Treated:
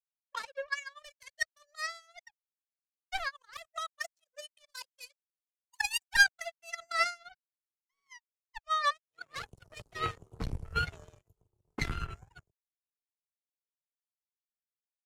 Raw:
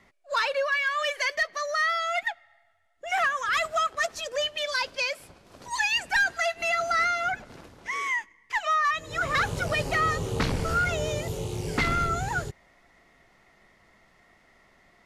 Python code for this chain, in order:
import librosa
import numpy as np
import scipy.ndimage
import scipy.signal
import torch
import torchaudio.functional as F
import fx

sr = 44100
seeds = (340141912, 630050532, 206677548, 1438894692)

y = fx.bin_expand(x, sr, power=1.5)
y = fx.peak_eq(y, sr, hz=3600.0, db=-5.0, octaves=0.22)
y = fx.power_curve(y, sr, exponent=3.0)
y = fx.band_widen(y, sr, depth_pct=100)